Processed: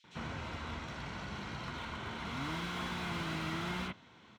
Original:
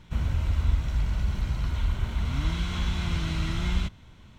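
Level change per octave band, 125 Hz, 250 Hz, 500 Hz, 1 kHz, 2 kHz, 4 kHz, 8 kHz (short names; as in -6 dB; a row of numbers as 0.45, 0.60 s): -16.0 dB, -6.0 dB, -1.5 dB, +0.5 dB, -1.5 dB, -5.0 dB, n/a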